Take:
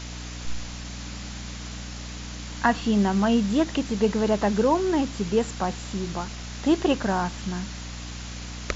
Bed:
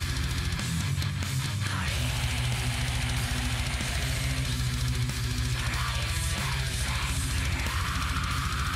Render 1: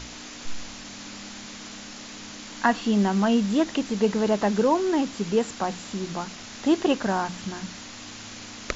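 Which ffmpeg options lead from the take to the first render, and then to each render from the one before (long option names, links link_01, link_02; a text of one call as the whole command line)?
ffmpeg -i in.wav -af "bandreject=frequency=60:width_type=h:width=6,bandreject=frequency=120:width_type=h:width=6,bandreject=frequency=180:width_type=h:width=6" out.wav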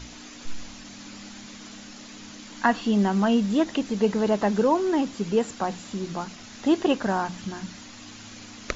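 ffmpeg -i in.wav -af "afftdn=noise_reduction=6:noise_floor=-41" out.wav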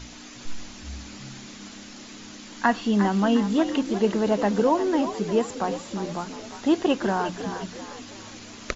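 ffmpeg -i in.wav -filter_complex "[0:a]asplit=6[link_01][link_02][link_03][link_04][link_05][link_06];[link_02]adelay=355,afreqshift=66,volume=-10.5dB[link_07];[link_03]adelay=710,afreqshift=132,volume=-17.6dB[link_08];[link_04]adelay=1065,afreqshift=198,volume=-24.8dB[link_09];[link_05]adelay=1420,afreqshift=264,volume=-31.9dB[link_10];[link_06]adelay=1775,afreqshift=330,volume=-39dB[link_11];[link_01][link_07][link_08][link_09][link_10][link_11]amix=inputs=6:normalize=0" out.wav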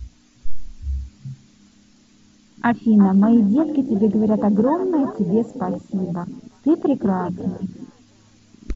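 ffmpeg -i in.wav -af "afwtdn=0.0501,bass=frequency=250:gain=13,treble=frequency=4000:gain=3" out.wav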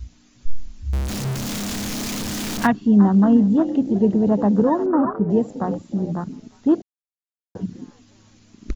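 ffmpeg -i in.wav -filter_complex "[0:a]asettb=1/sr,asplit=3[link_01][link_02][link_03];[link_01]atrim=end=0.934[link_04];[link_02]atrim=start=0.93:end=2.67,asetpts=PTS-STARTPTS,afade=type=in:duration=0.004:curve=qsin,afade=type=out:start_time=1.736:duration=0.004:curve=qsin,aeval=exprs='val(0)+0.5*0.0891*sgn(val(0))':channel_layout=same[link_05];[link_03]atrim=start=2.666[link_06];[link_04][link_05]acrossfade=duration=0.004:curve1=hsin:curve2=qsin[link_07];[link_07][link_06]acrossfade=duration=0.004:curve1=qsin:curve2=hsin,asettb=1/sr,asplit=3[link_08][link_09][link_10];[link_08]atrim=end=4.864[link_11];[link_09]atrim=start=4.86:end=5.3,asetpts=PTS-STARTPTS,afade=type=in:duration=0.004:curve=qsin,afade=type=out:start_time=0.436:duration=0.004:curve=qsin,lowpass=frequency=1300:width_type=q:width=4.9[link_12];[link_10]atrim=start=5.296[link_13];[link_11][link_12]acrossfade=duration=0.004:curve1=hsin:curve2=qsin[link_14];[link_14][link_13]acrossfade=duration=0.004:curve1=qsin:curve2=hsin,asplit=3[link_15][link_16][link_17];[link_15]atrim=end=6.82,asetpts=PTS-STARTPTS,afade=type=out:start_time=6.816:duration=0.004:curve=hsin[link_18];[link_16]atrim=start=6.82:end=7.55,asetpts=PTS-STARTPTS,volume=0[link_19];[link_17]atrim=start=7.55,asetpts=PTS-STARTPTS,afade=type=in:duration=0.004:curve=hsin[link_20];[link_18][link_19][link_20]concat=n=3:v=0:a=1" out.wav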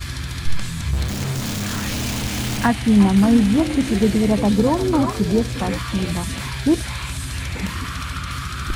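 ffmpeg -i in.wav -i bed.wav -filter_complex "[1:a]volume=1.5dB[link_01];[0:a][link_01]amix=inputs=2:normalize=0" out.wav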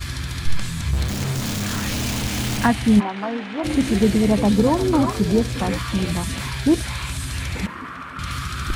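ffmpeg -i in.wav -filter_complex "[0:a]asplit=3[link_01][link_02][link_03];[link_01]afade=type=out:start_time=2.99:duration=0.02[link_04];[link_02]highpass=560,lowpass=2400,afade=type=in:start_time=2.99:duration=0.02,afade=type=out:start_time=3.63:duration=0.02[link_05];[link_03]afade=type=in:start_time=3.63:duration=0.02[link_06];[link_04][link_05][link_06]amix=inputs=3:normalize=0,asettb=1/sr,asplit=3[link_07][link_08][link_09];[link_07]atrim=end=7.664[link_10];[link_08]atrim=start=7.66:end=8.19,asetpts=PTS-STARTPTS,afade=type=in:duration=0.004:curve=qsin,afade=type=out:start_time=0.526:duration=0.004:curve=qsin,acrossover=split=200 2000:gain=0.0891 1 0.112[link_11][link_12][link_13];[link_11][link_12][link_13]amix=inputs=3:normalize=0[link_14];[link_09]atrim=start=8.186[link_15];[link_10][link_14]acrossfade=duration=0.004:curve1=hsin:curve2=qsin[link_16];[link_16][link_15]acrossfade=duration=0.004:curve1=qsin:curve2=hsin" out.wav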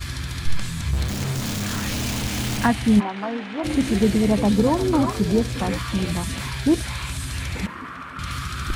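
ffmpeg -i in.wav -af "volume=-1.5dB" out.wav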